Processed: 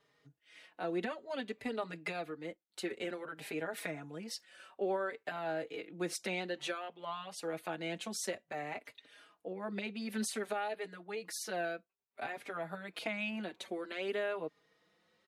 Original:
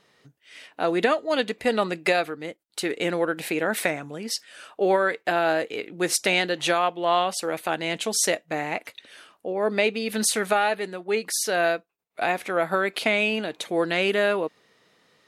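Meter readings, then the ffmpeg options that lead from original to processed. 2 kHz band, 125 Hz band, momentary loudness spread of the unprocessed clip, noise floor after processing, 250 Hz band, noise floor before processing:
-15.5 dB, -11.5 dB, 10 LU, -80 dBFS, -12.0 dB, -67 dBFS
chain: -filter_complex "[0:a]highshelf=f=4300:g=-5.5,acrossover=split=240[s0][s1];[s1]acompressor=threshold=0.0501:ratio=3[s2];[s0][s2]amix=inputs=2:normalize=0,asplit=2[s3][s4];[s4]adelay=4.5,afreqshift=0.56[s5];[s3][s5]amix=inputs=2:normalize=1,volume=0.422"

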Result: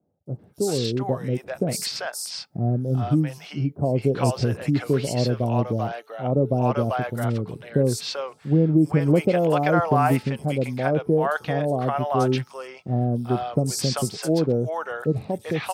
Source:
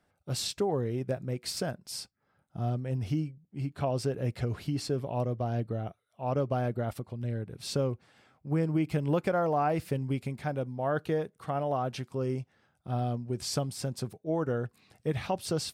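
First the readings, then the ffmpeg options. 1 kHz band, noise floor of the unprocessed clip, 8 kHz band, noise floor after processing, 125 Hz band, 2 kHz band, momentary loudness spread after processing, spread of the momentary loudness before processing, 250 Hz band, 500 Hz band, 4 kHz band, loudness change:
+8.5 dB, -74 dBFS, +7.5 dB, -54 dBFS, +8.5 dB, +10.5 dB, 9 LU, 9 LU, +10.0 dB, +8.5 dB, +7.0 dB, +9.0 dB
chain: -filter_complex "[0:a]highpass=120,bandreject=f=433.8:t=h:w=4,bandreject=f=867.6:t=h:w=4,bandreject=f=1301.4:t=h:w=4,dynaudnorm=f=270:g=7:m=2,acrossover=split=650|5500[s0][s1][s2];[s2]adelay=260[s3];[s1]adelay=390[s4];[s0][s4][s3]amix=inputs=3:normalize=0,volume=1.78"

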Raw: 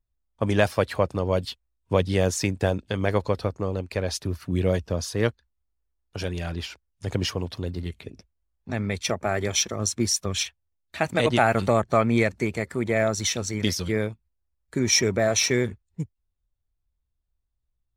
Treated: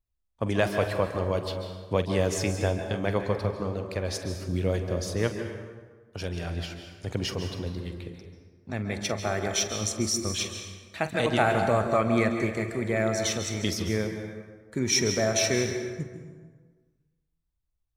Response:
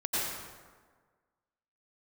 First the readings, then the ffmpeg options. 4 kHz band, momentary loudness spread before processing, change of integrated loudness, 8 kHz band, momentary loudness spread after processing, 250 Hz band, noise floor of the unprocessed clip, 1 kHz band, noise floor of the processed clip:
-3.0 dB, 13 LU, -3.0 dB, -3.0 dB, 14 LU, -2.5 dB, -77 dBFS, -2.5 dB, -77 dBFS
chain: -filter_complex "[0:a]asplit=2[s0][s1];[1:a]atrim=start_sample=2205,adelay=46[s2];[s1][s2]afir=irnorm=-1:irlink=0,volume=0.224[s3];[s0][s3]amix=inputs=2:normalize=0,volume=0.631"

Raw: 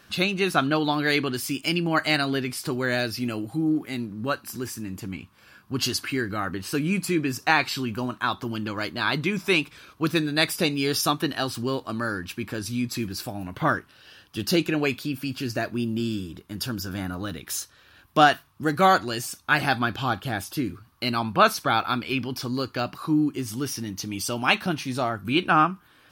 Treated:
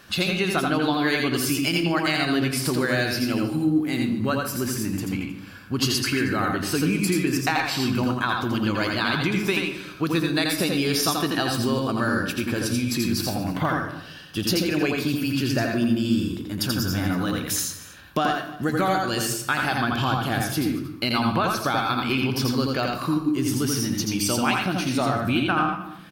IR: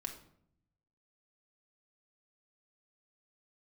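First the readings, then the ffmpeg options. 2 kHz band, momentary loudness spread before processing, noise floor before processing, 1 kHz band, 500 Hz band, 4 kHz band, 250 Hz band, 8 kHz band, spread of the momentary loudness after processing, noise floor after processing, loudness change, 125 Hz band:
+0.5 dB, 11 LU, -56 dBFS, -1.0 dB, +1.0 dB, +2.0 dB, +3.5 dB, +5.0 dB, 5 LU, -41 dBFS, +1.5 dB, +4.0 dB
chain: -filter_complex "[0:a]acompressor=threshold=0.0562:ratio=12,aecho=1:1:231:0.126,asplit=2[s0][s1];[1:a]atrim=start_sample=2205,adelay=84[s2];[s1][s2]afir=irnorm=-1:irlink=0,volume=1[s3];[s0][s3]amix=inputs=2:normalize=0,volume=1.68"

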